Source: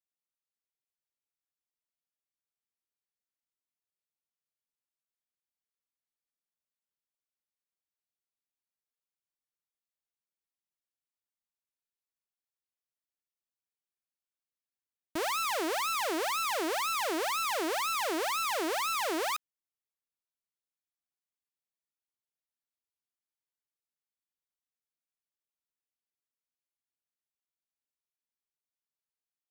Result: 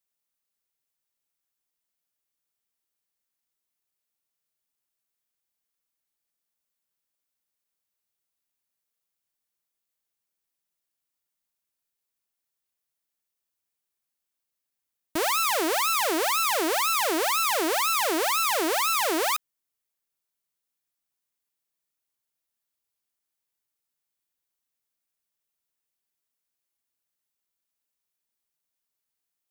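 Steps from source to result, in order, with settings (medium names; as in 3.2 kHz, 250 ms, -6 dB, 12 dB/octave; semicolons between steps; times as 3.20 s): treble shelf 8.6 kHz +7 dB; trim +6 dB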